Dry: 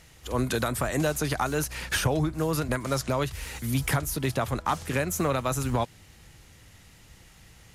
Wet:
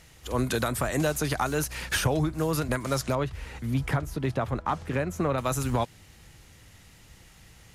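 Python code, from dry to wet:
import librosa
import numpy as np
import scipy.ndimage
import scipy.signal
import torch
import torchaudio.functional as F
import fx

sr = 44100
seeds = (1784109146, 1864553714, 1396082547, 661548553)

y = fx.lowpass(x, sr, hz=1600.0, slope=6, at=(3.15, 5.38))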